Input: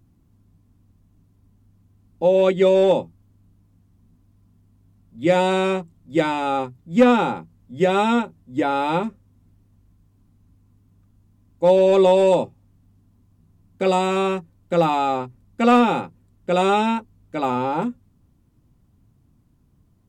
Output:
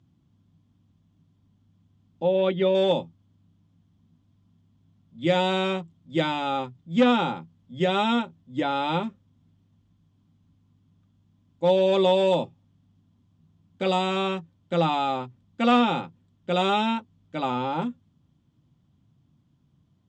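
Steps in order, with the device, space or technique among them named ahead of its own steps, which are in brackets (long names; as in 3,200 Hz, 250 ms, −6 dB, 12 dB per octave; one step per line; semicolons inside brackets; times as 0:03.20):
car door speaker (loudspeaker in its box 89–7,000 Hz, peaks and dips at 150 Hz +6 dB, 430 Hz −5 dB, 3,300 Hz +10 dB)
0:02.23–0:02.75: high-frequency loss of the air 220 metres
level −4.5 dB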